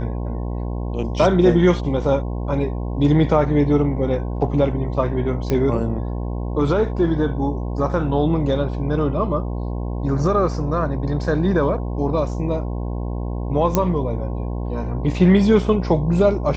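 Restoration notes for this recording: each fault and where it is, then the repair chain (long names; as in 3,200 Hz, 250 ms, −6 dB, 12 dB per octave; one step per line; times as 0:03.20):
mains buzz 60 Hz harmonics 18 −25 dBFS
0:05.50: click −9 dBFS
0:13.75: click −4 dBFS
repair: click removal
hum removal 60 Hz, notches 18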